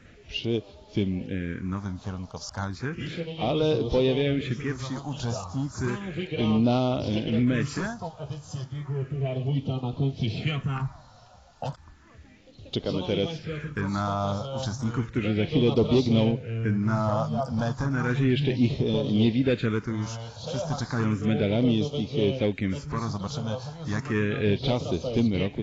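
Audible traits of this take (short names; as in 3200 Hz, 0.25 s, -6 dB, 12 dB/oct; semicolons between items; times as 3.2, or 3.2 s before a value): phasing stages 4, 0.33 Hz, lowest notch 340–1700 Hz; a quantiser's noise floor 10-bit, dither none; AAC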